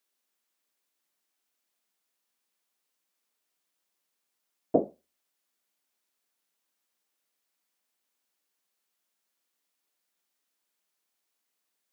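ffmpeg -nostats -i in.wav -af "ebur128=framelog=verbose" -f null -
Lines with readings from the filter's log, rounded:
Integrated loudness:
  I:         -29.8 LUFS
  Threshold: -41.5 LUFS
Loudness range:
  LRA:         0.0 LU
  Threshold: -58.6 LUFS
  LRA low:   -38.5 LUFS
  LRA high:  -38.5 LUFS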